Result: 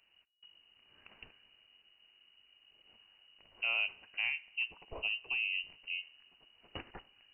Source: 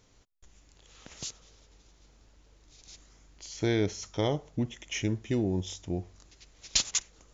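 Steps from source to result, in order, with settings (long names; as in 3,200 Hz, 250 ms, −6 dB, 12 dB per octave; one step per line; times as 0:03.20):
coupled-rooms reverb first 0.23 s, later 1.6 s, from −18 dB, DRR 15 dB
voice inversion scrambler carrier 2,900 Hz
level −7.5 dB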